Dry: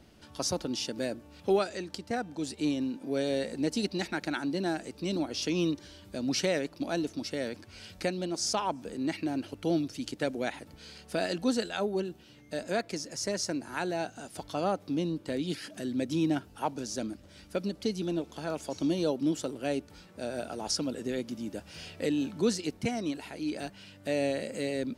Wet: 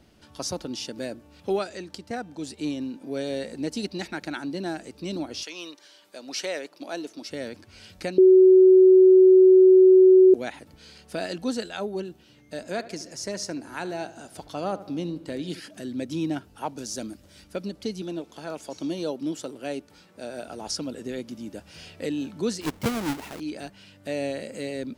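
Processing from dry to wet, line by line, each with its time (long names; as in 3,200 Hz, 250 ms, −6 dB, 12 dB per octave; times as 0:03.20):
0:05.42–0:07.29: high-pass filter 830 Hz → 290 Hz
0:08.18–0:10.34: beep over 374 Hz −10 dBFS
0:12.59–0:15.60: feedback echo with a low-pass in the loop 75 ms, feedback 57%, low-pass 2,700 Hz, level −15 dB
0:16.77–0:17.44: high-shelf EQ 6,600 Hz +9.5 dB
0:18.02–0:20.48: high-pass filter 180 Hz 6 dB per octave
0:22.61–0:23.40: each half-wave held at its own peak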